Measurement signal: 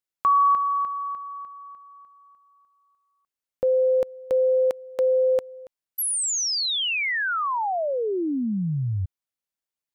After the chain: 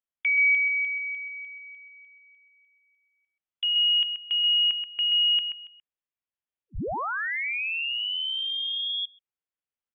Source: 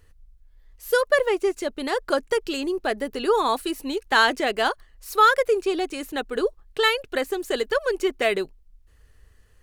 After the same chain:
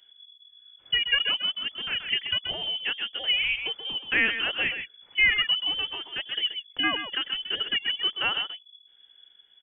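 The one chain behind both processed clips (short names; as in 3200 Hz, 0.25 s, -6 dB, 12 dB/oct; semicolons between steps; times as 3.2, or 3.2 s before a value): speakerphone echo 0.13 s, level -7 dB; inverted band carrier 3400 Hz; gain -5 dB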